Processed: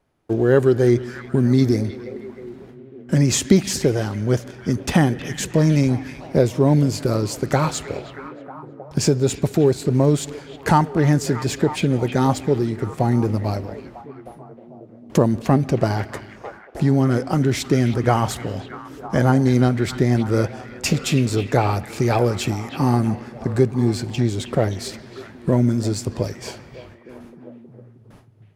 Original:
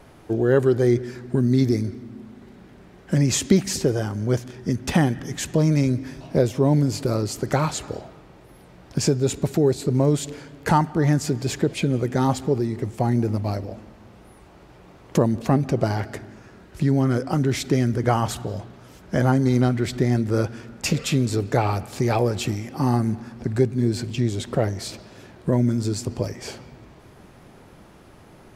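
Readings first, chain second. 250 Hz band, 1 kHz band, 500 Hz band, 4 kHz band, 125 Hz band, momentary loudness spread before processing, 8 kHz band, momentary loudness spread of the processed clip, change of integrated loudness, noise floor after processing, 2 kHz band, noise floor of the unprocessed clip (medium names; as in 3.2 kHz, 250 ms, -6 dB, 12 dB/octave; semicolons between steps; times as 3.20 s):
+2.5 dB, +3.0 dB, +3.0 dB, +2.5 dB, +2.5 dB, 12 LU, +2.0 dB, 17 LU, +2.5 dB, -45 dBFS, +3.0 dB, -49 dBFS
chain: in parallel at -8 dB: crossover distortion -35 dBFS; on the sum: gate with hold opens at -36 dBFS; repeats whose band climbs or falls 315 ms, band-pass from 2.5 kHz, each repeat -0.7 oct, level -7.5 dB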